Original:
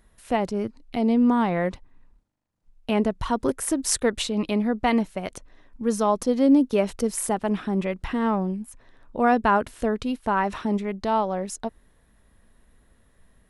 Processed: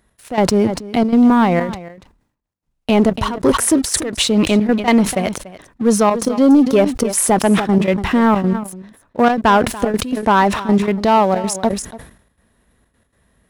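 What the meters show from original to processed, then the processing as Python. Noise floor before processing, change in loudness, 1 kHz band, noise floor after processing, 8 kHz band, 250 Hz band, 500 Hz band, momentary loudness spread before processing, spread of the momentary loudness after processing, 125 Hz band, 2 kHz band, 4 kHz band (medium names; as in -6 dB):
-61 dBFS, +9.0 dB, +8.5 dB, -68 dBFS, +10.0 dB, +9.0 dB, +8.5 dB, 11 LU, 10 LU, +11.0 dB, +9.0 dB, +11.5 dB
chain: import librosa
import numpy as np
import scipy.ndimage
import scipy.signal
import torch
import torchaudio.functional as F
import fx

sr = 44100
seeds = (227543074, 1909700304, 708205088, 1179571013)

p1 = scipy.signal.sosfilt(scipy.signal.butter(2, 56.0, 'highpass', fs=sr, output='sos'), x)
p2 = fx.rider(p1, sr, range_db=10, speed_s=0.5)
p3 = p1 + F.gain(torch.from_numpy(p2), 0.5).numpy()
p4 = fx.leveller(p3, sr, passes=2)
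p5 = fx.step_gate(p4, sr, bpm=160, pattern='x.x.xxxx', floor_db=-12.0, edge_ms=4.5)
p6 = p5 + fx.echo_single(p5, sr, ms=288, db=-17.5, dry=0)
p7 = fx.sustainer(p6, sr, db_per_s=100.0)
y = F.gain(torch.from_numpy(p7), -2.5).numpy()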